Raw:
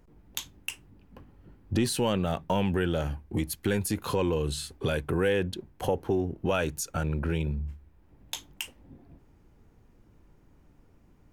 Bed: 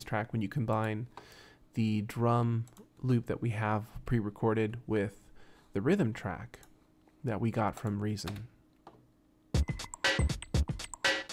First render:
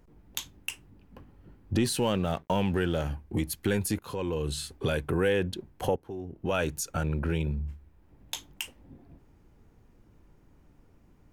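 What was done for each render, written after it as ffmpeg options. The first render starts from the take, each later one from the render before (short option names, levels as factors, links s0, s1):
-filter_complex "[0:a]asettb=1/sr,asplit=3[s0][s1][s2];[s0]atrim=end=1.994[s3];[s1]atrim=start=1.99:end=3.1,asetpts=PTS-STARTPTS,afade=t=in:d=0.004:c=qsin,afade=t=out:st=1.106:d=0.004:c=qsin,aeval=exprs='sgn(val(0))*max(abs(val(0))-0.00316,0)':c=same[s4];[s2]atrim=start=3.096[s5];[s3][s4]acrossfade=d=0.004:c1=hsin:c2=qsin[s6];[s6][s5]acrossfade=d=0.004:c1=qsin:c2=hsin,asplit=3[s7][s8][s9];[s7]atrim=end=3.99,asetpts=PTS-STARTPTS,afade=t=out:st=3.986:d=0.004:c=hsin:silence=0.237137[s10];[s8]atrim=start=3.99:end=5.96,asetpts=PTS-STARTPTS,afade=t=in:d=0.6:silence=0.237137,afade=t=out:st=1.966:d=0.004:c=hsin:silence=0.199526[s11];[s9]atrim=start=5.96,asetpts=PTS-STARTPTS,afade=t=in:d=0.64:c=qua:silence=0.199526[s12];[s10][s11][s12]concat=n=3:v=0:a=1"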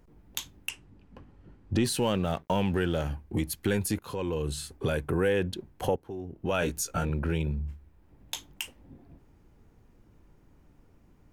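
-filter_complex "[0:a]asettb=1/sr,asplit=3[s0][s1][s2];[s0]atrim=end=0.694[s3];[s1]atrim=start=0.69:end=1.84,asetpts=PTS-STARTPTS,afade=t=in:d=0.004:c=qsin,afade=t=out:st=1.146:d=0.004:c=qsin,lowpass=8200[s4];[s2]atrim=start=1.836[s5];[s3][s4]acrossfade=d=0.004:c1=hsin:c2=qsin[s6];[s6][s5]acrossfade=d=0.004:c1=qsin:c2=hsin,asettb=1/sr,asplit=3[s7][s8][s9];[s7]atrim=end=4.424[s10];[s8]atrim=start=4.42:end=5.37,asetpts=PTS-STARTPTS,afade=t=in:d=0.004:c=qsin,afade=t=out:st=0.946:d=0.004:c=qsin,equalizer=f=3500:t=o:w=1.2:g=-4[s11];[s9]atrim=start=5.366[s12];[s10][s11]acrossfade=d=0.004:c1=hsin:c2=qsin[s13];[s13][s12]acrossfade=d=0.004:c1=qsin:c2=hsin,asettb=1/sr,asplit=3[s14][s15][s16];[s14]atrim=end=6.604[s17];[s15]atrim=start=6.6:end=7.1,asetpts=PTS-STARTPTS,afade=t=in:d=0.004:c=qsin,afade=t=out:st=0.496:d=0.004:c=qsin,asplit=2[s18][s19];[s19]adelay=17,volume=0.668[s20];[s18][s20]amix=inputs=2:normalize=0,atrim=end_sample=22050[s21];[s16]atrim=start=7.096[s22];[s17][s21]acrossfade=d=0.004:c1=hsin:c2=qsin[s23];[s23][s22]acrossfade=d=0.004:c1=qsin:c2=hsin"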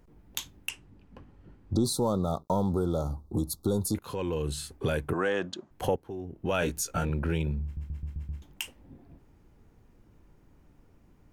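-filter_complex "[0:a]asettb=1/sr,asplit=3[s0][s1][s2];[s0]atrim=end=1.734[s3];[s1]atrim=start=1.73:end=3.95,asetpts=PTS-STARTPTS,afade=t=in:d=0.004:c=qsin,afade=t=out:st=2.216:d=0.004:c=qsin,asuperstop=centerf=2200:order=20:qfactor=1[s4];[s2]atrim=start=3.946[s5];[s3][s4]acrossfade=d=0.004:c1=hsin:c2=qsin[s6];[s6][s5]acrossfade=d=0.004:c1=qsin:c2=hsin,asettb=1/sr,asplit=3[s7][s8][s9];[s7]atrim=end=5.134[s10];[s8]atrim=start=5.13:end=5.71,asetpts=PTS-STARTPTS,afade=t=in:d=0.004:c=qsin,afade=t=out:st=0.576:d=0.004:c=qsin,highpass=240,equalizer=f=450:t=q:w=4:g=-8,equalizer=f=640:t=q:w=4:g=8,equalizer=f=1200:t=q:w=4:g=10,equalizer=f=2400:t=q:w=4:g=-5,equalizer=f=6800:t=q:w=4:g=6,lowpass=f=7300:w=0.5412,lowpass=f=7300:w=1.3066[s11];[s9]atrim=start=5.706[s12];[s10][s11]acrossfade=d=0.004:c1=hsin:c2=qsin[s13];[s13][s12]acrossfade=d=0.004:c1=qsin:c2=hsin,asplit=7[s14][s15][s16][s17][s18][s19][s20];[s14]atrim=end=7.772[s21];[s15]atrim=start=7.638:end=7.772[s22];[s16]atrim=start=7.638:end=7.772[s23];[s17]atrim=start=7.638:end=7.772[s24];[s18]atrim=start=7.638:end=7.772[s25];[s19]atrim=start=7.638:end=7.772[s26];[s20]atrim=start=8.418[s27];[s21][s22]acrossfade=d=0.004:c1=hsin:c2=hsin[s28];[s28][s23]acrossfade=d=0.004:c1=hsin:c2=hsin[s29];[s29][s24]acrossfade=d=0.004:c1=hsin:c2=hsin[s30];[s30][s25]acrossfade=d=0.004:c1=hsin:c2=hsin[s31];[s31][s26]acrossfade=d=0.004:c1=hsin:c2=hsin[s32];[s32][s27]acrossfade=d=0.004:c1=hsin:c2=hsin"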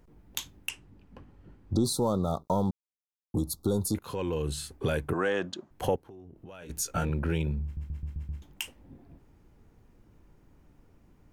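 -filter_complex "[0:a]asplit=3[s0][s1][s2];[s0]afade=t=out:st=6.03:d=0.02[s3];[s1]acompressor=threshold=0.00562:ratio=5:attack=3.2:release=140:knee=1:detection=peak,afade=t=in:st=6.03:d=0.02,afade=t=out:st=6.69:d=0.02[s4];[s2]afade=t=in:st=6.69:d=0.02[s5];[s3][s4][s5]amix=inputs=3:normalize=0,asplit=3[s6][s7][s8];[s6]atrim=end=2.71,asetpts=PTS-STARTPTS,afade=t=out:st=2.706:d=0.004:c=hsin[s9];[s7]atrim=start=2.71:end=3.34,asetpts=PTS-STARTPTS,volume=0[s10];[s8]atrim=start=3.34,asetpts=PTS-STARTPTS,afade=t=in:d=0.004:c=hsin[s11];[s9][s10][s11]concat=n=3:v=0:a=1"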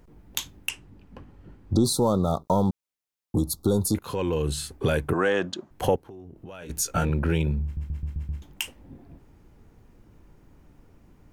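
-af "volume=1.78"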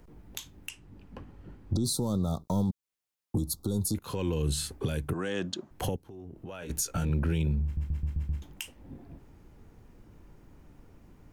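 -filter_complex "[0:a]acrossover=split=280|3000[s0][s1][s2];[s1]acompressor=threshold=0.0141:ratio=3[s3];[s0][s3][s2]amix=inputs=3:normalize=0,alimiter=limit=0.1:level=0:latency=1:release=279"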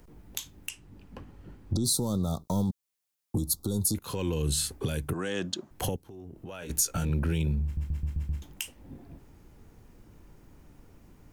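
-af "highshelf=f=4200:g=6.5"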